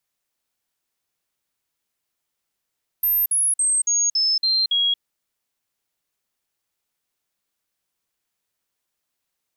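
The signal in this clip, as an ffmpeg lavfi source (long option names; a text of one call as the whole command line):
ffmpeg -f lavfi -i "aevalsrc='0.15*clip(min(mod(t,0.28),0.23-mod(t,0.28))/0.005,0,1)*sin(2*PI*13200*pow(2,-floor(t/0.28)/3)*mod(t,0.28))':duration=1.96:sample_rate=44100" out.wav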